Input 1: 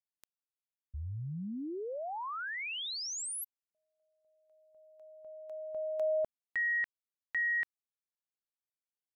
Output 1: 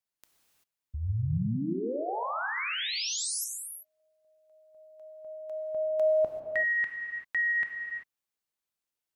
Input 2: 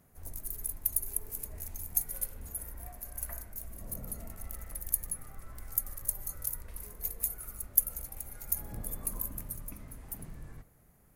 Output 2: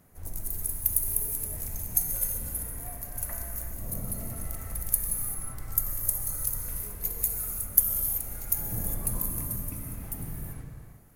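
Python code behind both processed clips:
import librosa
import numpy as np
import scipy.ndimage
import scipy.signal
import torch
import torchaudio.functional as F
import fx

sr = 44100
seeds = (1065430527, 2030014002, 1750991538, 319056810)

y = fx.dynamic_eq(x, sr, hz=120.0, q=0.88, threshold_db=-58.0, ratio=6.0, max_db=5)
y = fx.rev_gated(y, sr, seeds[0], gate_ms=410, shape='flat', drr_db=2.0)
y = y * librosa.db_to_amplitude(4.0)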